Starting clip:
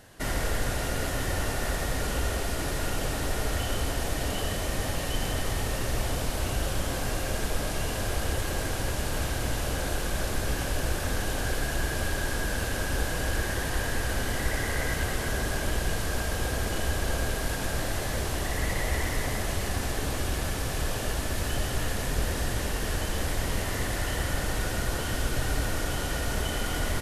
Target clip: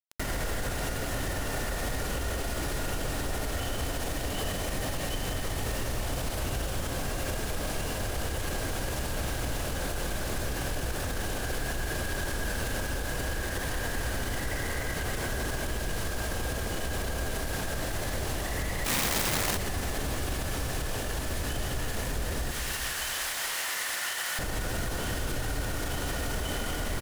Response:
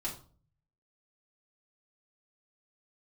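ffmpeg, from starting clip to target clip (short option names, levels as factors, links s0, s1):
-filter_complex "[0:a]asettb=1/sr,asplit=3[s0][s1][s2];[s0]atrim=end=22.514[s3];[s1]atrim=start=22.51:end=24.39,asetpts=PTS-STARTPTS,afade=t=in:d=0.004:c=qsin,afade=t=out:st=1.876:d=0.004:c=qsin,highpass=1200[s4];[s2]atrim=start=24.386[s5];[s3][s4]acrossfade=d=0.004:c1=hsin:c2=qsin[s6];[s6][s5]acrossfade=d=0.004:c1=qsin:c2=hsin,acrusher=bits=6:mix=0:aa=0.000001,asplit=2[s7][s8];[s8]adelay=207,lowpass=f=2000:p=1,volume=0.282,asplit=2[s9][s10];[s10]adelay=207,lowpass=f=2000:p=1,volume=0.51,asplit=2[s11][s12];[s12]adelay=207,lowpass=f=2000:p=1,volume=0.51,asplit=2[s13][s14];[s14]adelay=207,lowpass=f=2000:p=1,volume=0.51,asplit=2[s15][s16];[s16]adelay=207,lowpass=f=2000:p=1,volume=0.51[s17];[s7][s9][s11][s13][s15][s17]amix=inputs=6:normalize=0,asplit=3[s18][s19][s20];[s18]afade=t=out:st=18.84:d=0.02[s21];[s19]aeval=exprs='(mod(15.8*val(0)+1,2)-1)/15.8':c=same,afade=t=in:st=18.84:d=0.02,afade=t=out:st=19.56:d=0.02[s22];[s20]afade=t=in:st=19.56:d=0.02[s23];[s21][s22][s23]amix=inputs=3:normalize=0,alimiter=level_in=2.37:limit=0.0631:level=0:latency=1:release=210,volume=0.422,volume=2.82"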